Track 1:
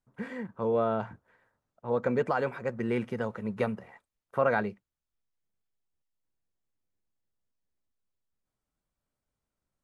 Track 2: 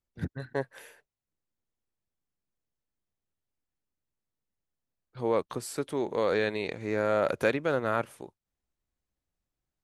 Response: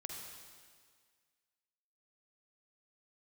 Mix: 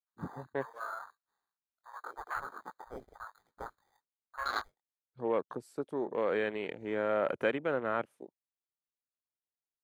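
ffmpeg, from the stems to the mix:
-filter_complex "[0:a]highpass=frequency=1100:width=0.5412,highpass=frequency=1100:width=1.3066,flanger=delay=17.5:depth=6.7:speed=2.6,acrusher=samples=16:mix=1:aa=0.000001,volume=1.5dB[link_01];[1:a]highpass=170,agate=range=-7dB:threshold=-50dB:ratio=16:detection=peak,volume=-4dB[link_02];[link_01][link_02]amix=inputs=2:normalize=0,afwtdn=0.00631"

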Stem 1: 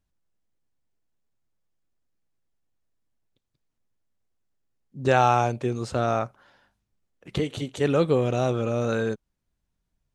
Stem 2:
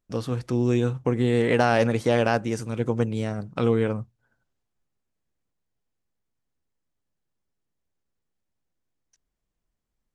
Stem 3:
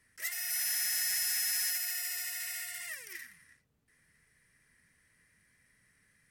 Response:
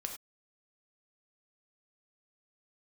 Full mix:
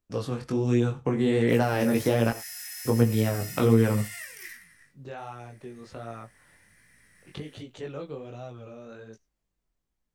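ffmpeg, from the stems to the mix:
-filter_complex "[0:a]lowpass=6000,acompressor=threshold=-31dB:ratio=2,volume=-15.5dB[link_01];[1:a]volume=-1dB,asplit=3[link_02][link_03][link_04];[link_02]atrim=end=2.31,asetpts=PTS-STARTPTS,afade=type=out:start_time=2.306:duration=0.004:curve=hsin[link_05];[link_03]atrim=start=2.31:end=2.85,asetpts=PTS-STARTPTS,volume=0[link_06];[link_04]atrim=start=2.85,asetpts=PTS-STARTPTS,afade=type=in:duration=0.004:curve=hsin[link_07];[link_05][link_06][link_07]concat=n=3:v=0:a=1,asplit=2[link_08][link_09];[link_09]volume=-7dB[link_10];[2:a]acompressor=threshold=-38dB:ratio=5,adelay=1300,volume=0.5dB[link_11];[3:a]atrim=start_sample=2205[link_12];[link_10][link_12]afir=irnorm=-1:irlink=0[link_13];[link_01][link_08][link_11][link_13]amix=inputs=4:normalize=0,dynaudnorm=framelen=300:gausssize=13:maxgain=11.5dB,flanger=delay=17:depth=4.8:speed=1.3,acrossover=split=360[link_14][link_15];[link_15]acompressor=threshold=-25dB:ratio=5[link_16];[link_14][link_16]amix=inputs=2:normalize=0"

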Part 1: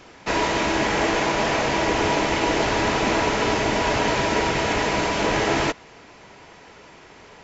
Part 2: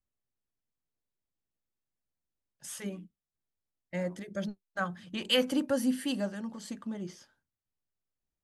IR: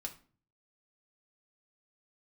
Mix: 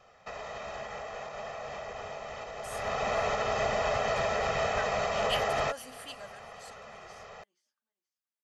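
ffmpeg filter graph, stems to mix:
-filter_complex "[0:a]equalizer=frequency=890:width_type=o:width=1.7:gain=9,aecho=1:1:1.6:0.93,alimiter=limit=-11.5dB:level=0:latency=1:release=274,volume=-8.5dB,afade=type=in:start_time=2.65:duration=0.45:silence=0.281838[link_01];[1:a]highpass=860,volume=-5.5dB,asplit=2[link_02][link_03];[link_03]volume=-22dB,aecho=0:1:477|954|1431:1|0.18|0.0324[link_04];[link_01][link_02][link_04]amix=inputs=3:normalize=0"

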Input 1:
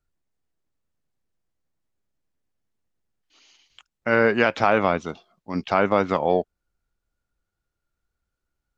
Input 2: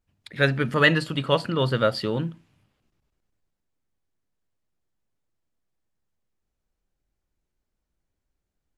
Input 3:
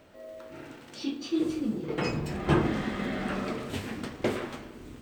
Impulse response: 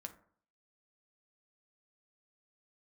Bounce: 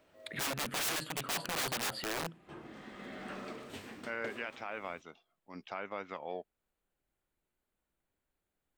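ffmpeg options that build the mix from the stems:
-filter_complex "[0:a]bandreject=frequency=4400:width=15,adynamicequalizer=threshold=0.0141:dfrequency=2300:dqfactor=1.2:tfrequency=2300:tqfactor=1.2:attack=5:release=100:ratio=0.375:range=3.5:mode=boostabove:tftype=bell,volume=-17dB[link_01];[1:a]equalizer=frequency=5500:width_type=o:width=0.47:gain=-14.5,aeval=exprs='(mod(13.3*val(0)+1,2)-1)/13.3':channel_layout=same,volume=1dB,asplit=2[link_02][link_03];[2:a]volume=-9dB[link_04];[link_03]apad=whole_len=221365[link_05];[link_04][link_05]sidechaincompress=threshold=-41dB:ratio=8:attack=25:release=883[link_06];[link_01][link_02][link_06]amix=inputs=3:normalize=0,lowshelf=frequency=180:gain=-12,alimiter=level_in=2.5dB:limit=-24dB:level=0:latency=1:release=497,volume=-2.5dB"

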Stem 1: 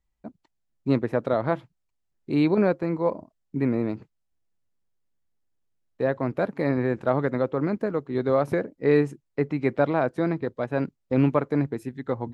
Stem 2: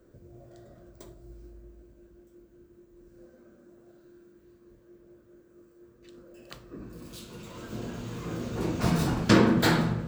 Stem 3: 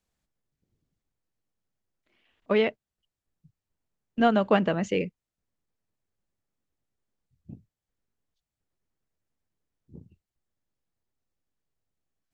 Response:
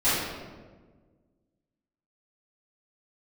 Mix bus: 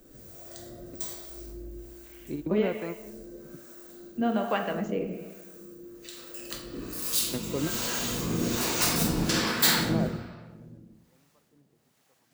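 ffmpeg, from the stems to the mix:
-filter_complex "[0:a]dynaudnorm=framelen=500:gausssize=11:maxgain=11.5dB,alimiter=limit=-12dB:level=0:latency=1:release=272,volume=-5.5dB[link_01];[1:a]acompressor=threshold=-29dB:ratio=6,crystalizer=i=9.5:c=0,asoftclip=type=tanh:threshold=-15dB,volume=-0.5dB,asplit=2[link_02][link_03];[link_03]volume=-11dB[link_04];[2:a]highpass=frequency=110:width=0.5412,highpass=frequency=110:width=1.3066,acompressor=mode=upward:threshold=-42dB:ratio=2.5,volume=-4dB,asplit=3[link_05][link_06][link_07];[link_06]volume=-19.5dB[link_08];[link_07]apad=whole_len=543849[link_09];[link_01][link_09]sidechaingate=range=-33dB:threshold=-60dB:ratio=16:detection=peak[link_10];[3:a]atrim=start_sample=2205[link_11];[link_04][link_08]amix=inputs=2:normalize=0[link_12];[link_12][link_11]afir=irnorm=-1:irlink=0[link_13];[link_10][link_02][link_05][link_13]amix=inputs=4:normalize=0,bandreject=frequency=60:width_type=h:width=6,bandreject=frequency=120:width_type=h:width=6,acrossover=split=580[link_14][link_15];[link_14]aeval=exprs='val(0)*(1-0.7/2+0.7/2*cos(2*PI*1.2*n/s))':channel_layout=same[link_16];[link_15]aeval=exprs='val(0)*(1-0.7/2-0.7/2*cos(2*PI*1.2*n/s))':channel_layout=same[link_17];[link_16][link_17]amix=inputs=2:normalize=0"

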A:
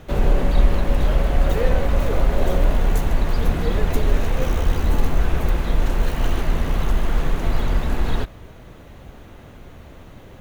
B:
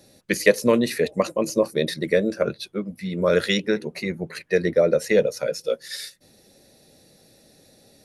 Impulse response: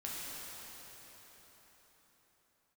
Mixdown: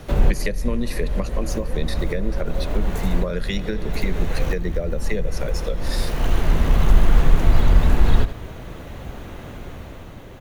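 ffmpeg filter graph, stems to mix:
-filter_complex "[0:a]dynaudnorm=framelen=120:gausssize=11:maxgain=4dB,volume=3dB,asplit=2[link_01][link_02];[link_02]volume=-14dB[link_03];[1:a]adynamicequalizer=threshold=0.0224:dfrequency=540:dqfactor=3.6:tfrequency=540:tqfactor=3.6:attack=5:release=100:ratio=0.375:range=2.5:mode=cutabove:tftype=bell,volume=0.5dB,asplit=3[link_04][link_05][link_06];[link_05]volume=-16dB[link_07];[link_06]apad=whole_len=458973[link_08];[link_01][link_08]sidechaincompress=threshold=-30dB:ratio=8:attack=16:release=1200[link_09];[2:a]atrim=start_sample=2205[link_10];[link_07][link_10]afir=irnorm=-1:irlink=0[link_11];[link_03]aecho=0:1:78:1[link_12];[link_09][link_04][link_11][link_12]amix=inputs=4:normalize=0,acrossover=split=180[link_13][link_14];[link_14]acompressor=threshold=-25dB:ratio=10[link_15];[link_13][link_15]amix=inputs=2:normalize=0"

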